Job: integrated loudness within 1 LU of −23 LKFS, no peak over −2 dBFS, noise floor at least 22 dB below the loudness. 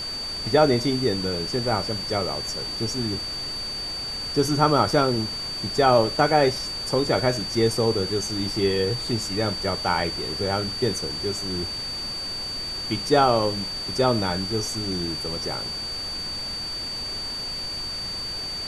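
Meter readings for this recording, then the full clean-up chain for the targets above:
interfering tone 4,600 Hz; level of the tone −29 dBFS; background noise floor −31 dBFS; target noise floor −46 dBFS; integrated loudness −24.0 LKFS; sample peak −5.0 dBFS; target loudness −23.0 LKFS
→ notch filter 4,600 Hz, Q 30
noise reduction from a noise print 15 dB
level +1 dB

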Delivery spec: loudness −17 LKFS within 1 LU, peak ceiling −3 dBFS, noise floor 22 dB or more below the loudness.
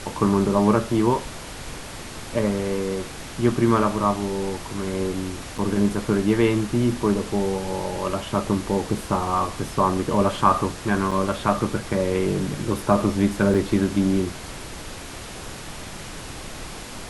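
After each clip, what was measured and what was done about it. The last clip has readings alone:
number of dropouts 3; longest dropout 5.4 ms; background noise floor −37 dBFS; target noise floor −45 dBFS; integrated loudness −23.0 LKFS; sample peak −4.0 dBFS; target loudness −17.0 LKFS
→ repair the gap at 0:05.58/0:11.11/0:13.54, 5.4 ms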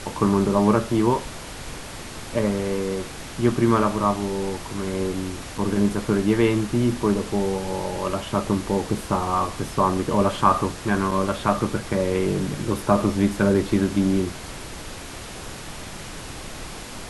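number of dropouts 0; background noise floor −37 dBFS; target noise floor −45 dBFS
→ noise reduction from a noise print 8 dB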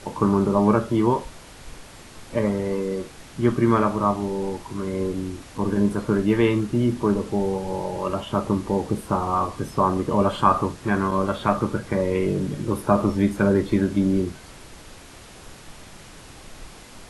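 background noise floor −44 dBFS; target noise floor −45 dBFS
→ noise reduction from a noise print 6 dB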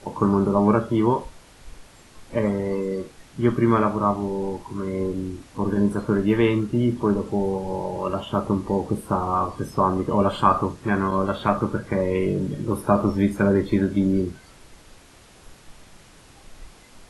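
background noise floor −50 dBFS; integrated loudness −23.0 LKFS; sample peak −4.5 dBFS; target loudness −17.0 LKFS
→ level +6 dB
brickwall limiter −3 dBFS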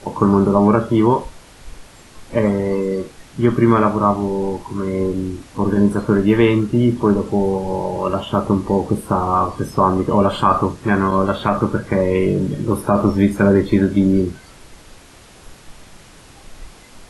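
integrated loudness −17.5 LKFS; sample peak −3.0 dBFS; background noise floor −44 dBFS

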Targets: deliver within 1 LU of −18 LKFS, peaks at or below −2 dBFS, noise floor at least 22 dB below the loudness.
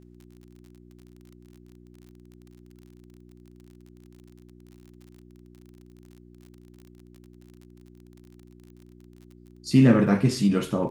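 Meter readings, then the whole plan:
crackle rate 40 per second; mains hum 60 Hz; hum harmonics up to 360 Hz; level of the hum −48 dBFS; integrated loudness −21.0 LKFS; sample peak −6.5 dBFS; target loudness −18.0 LKFS
→ click removal
hum removal 60 Hz, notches 6
level +3 dB

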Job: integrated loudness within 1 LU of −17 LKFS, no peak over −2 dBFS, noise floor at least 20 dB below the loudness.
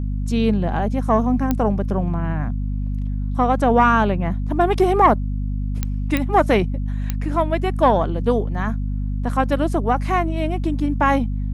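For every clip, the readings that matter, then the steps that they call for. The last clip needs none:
number of clicks 4; mains hum 50 Hz; hum harmonics up to 250 Hz; level of the hum −21 dBFS; integrated loudness −20.5 LKFS; sample peak −2.5 dBFS; target loudness −17.0 LKFS
→ click removal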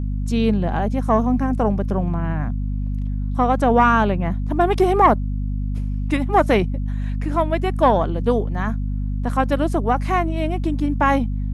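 number of clicks 0; mains hum 50 Hz; hum harmonics up to 250 Hz; level of the hum −21 dBFS
→ mains-hum notches 50/100/150/200/250 Hz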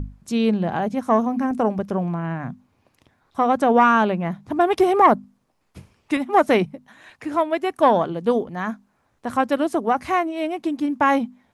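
mains hum none found; integrated loudness −21.0 LKFS; sample peak −3.5 dBFS; target loudness −17.0 LKFS
→ level +4 dB
brickwall limiter −2 dBFS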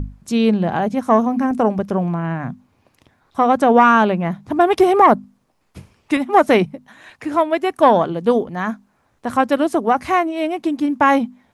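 integrated loudness −17.0 LKFS; sample peak −2.0 dBFS; background noise floor −63 dBFS

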